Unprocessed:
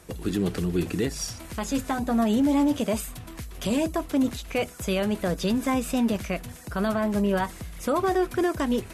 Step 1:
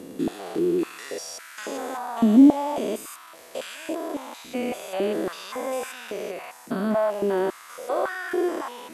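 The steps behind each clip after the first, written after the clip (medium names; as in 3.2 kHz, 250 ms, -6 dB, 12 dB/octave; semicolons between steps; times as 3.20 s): spectrogram pixelated in time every 200 ms; step-sequenced high-pass 3.6 Hz 260–1500 Hz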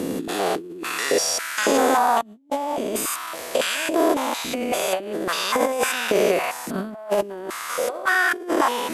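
compressor with a negative ratio -31 dBFS, ratio -0.5; trim +8 dB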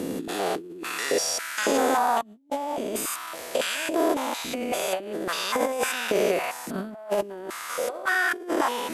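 band-stop 1.1 kHz, Q 21; trim -4 dB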